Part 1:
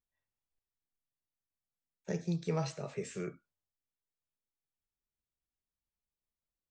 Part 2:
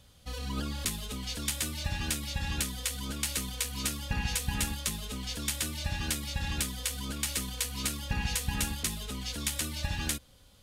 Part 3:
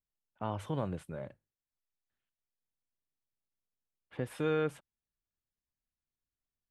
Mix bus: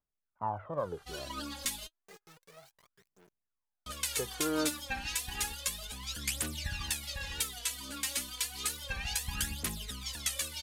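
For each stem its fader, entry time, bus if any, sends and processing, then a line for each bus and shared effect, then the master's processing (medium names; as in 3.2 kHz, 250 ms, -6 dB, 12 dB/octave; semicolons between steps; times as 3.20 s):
-17.5 dB, 0.00 s, no send, bit crusher 6-bit; auto duck -22 dB, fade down 1.90 s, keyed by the third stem
-4.0 dB, 0.80 s, muted 1.87–3.86 s, no send, none
+2.0 dB, 0.00 s, no send, low-pass 1.6 kHz 24 dB/octave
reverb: none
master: phaser 0.31 Hz, delay 3.8 ms, feedback 69%; bass shelf 400 Hz -9.5 dB; warped record 45 rpm, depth 100 cents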